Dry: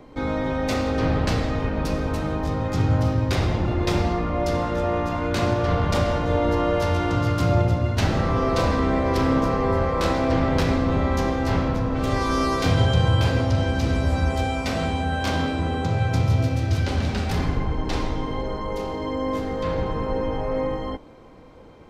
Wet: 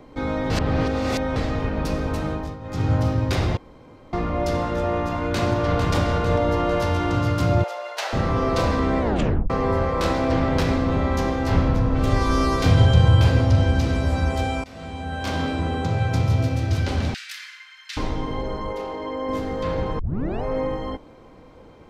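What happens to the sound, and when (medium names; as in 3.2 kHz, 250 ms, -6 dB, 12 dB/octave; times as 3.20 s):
0.50–1.36 s: reverse
2.29–2.90 s: dip -12.5 dB, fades 0.29 s
3.57–4.13 s: room tone
5.06–5.92 s: echo throw 450 ms, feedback 60%, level -7 dB
7.64–8.13 s: steep high-pass 530 Hz
9.01 s: tape stop 0.49 s
11.52–13.83 s: bass shelf 120 Hz +8 dB
14.64–15.52 s: fade in, from -23 dB
17.14–17.97 s: steep high-pass 1.6 kHz
18.72–19.29 s: tone controls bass -11 dB, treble -7 dB
19.99 s: tape start 0.44 s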